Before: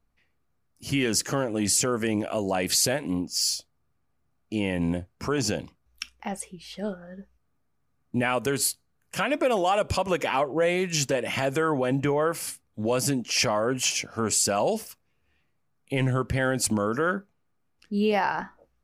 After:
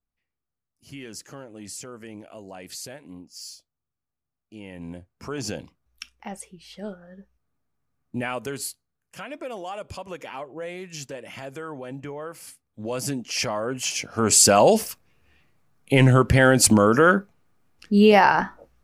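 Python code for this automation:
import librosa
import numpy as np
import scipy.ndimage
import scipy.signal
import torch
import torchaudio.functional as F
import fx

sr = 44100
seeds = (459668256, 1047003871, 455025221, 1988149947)

y = fx.gain(x, sr, db=fx.line((4.57, -14.5), (5.52, -3.5), (8.24, -3.5), (9.16, -11.0), (12.32, -11.0), (13.1, -2.5), (13.85, -2.5), (14.43, 9.0)))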